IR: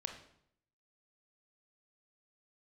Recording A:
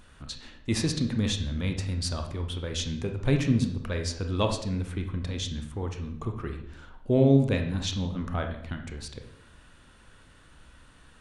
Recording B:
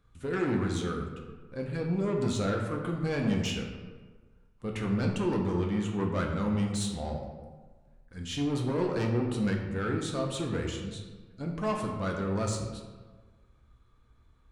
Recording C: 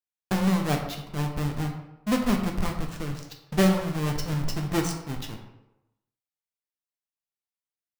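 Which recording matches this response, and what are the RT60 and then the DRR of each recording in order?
A; 0.70 s, 1.4 s, 0.90 s; 4.5 dB, 0.5 dB, 1.5 dB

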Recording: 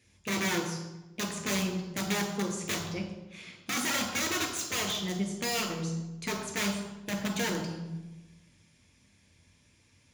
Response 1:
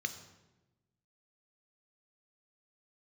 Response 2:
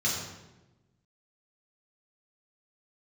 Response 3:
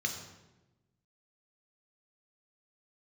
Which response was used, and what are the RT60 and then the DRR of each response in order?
3; 1.1 s, 1.1 s, 1.1 s; 8.0 dB, -5.5 dB, 2.5 dB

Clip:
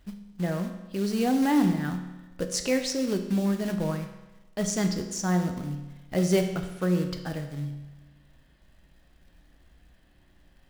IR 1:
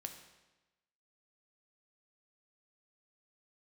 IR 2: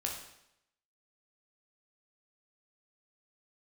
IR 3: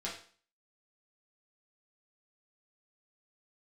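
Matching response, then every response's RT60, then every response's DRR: 1; 1.1 s, 0.80 s, 0.45 s; 5.0 dB, -1.0 dB, -6.0 dB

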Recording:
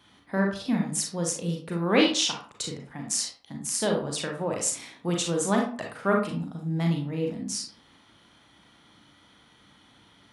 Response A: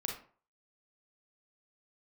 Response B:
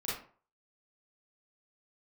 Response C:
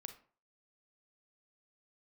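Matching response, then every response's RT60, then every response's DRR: A; 0.45 s, 0.45 s, 0.45 s; 0.5 dB, -8.5 dB, 7.5 dB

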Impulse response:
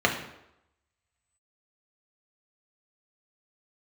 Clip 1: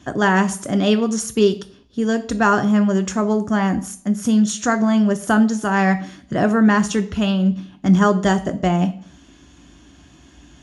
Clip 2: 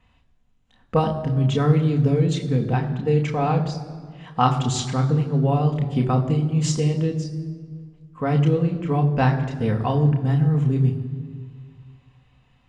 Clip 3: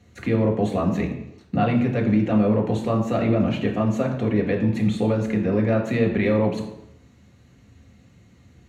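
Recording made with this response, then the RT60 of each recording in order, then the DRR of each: 3; 0.55 s, 1.8 s, 0.85 s; 8.0 dB, 2.5 dB, 0.0 dB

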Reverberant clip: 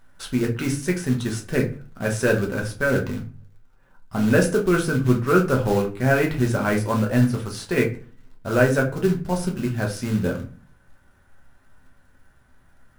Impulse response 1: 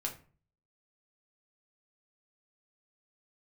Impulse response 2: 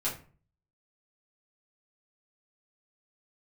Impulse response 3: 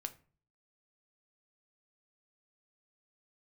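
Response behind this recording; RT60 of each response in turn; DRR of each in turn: 1; 0.40 s, 0.40 s, 0.40 s; 0.0 dB, -7.5 dB, 8.0 dB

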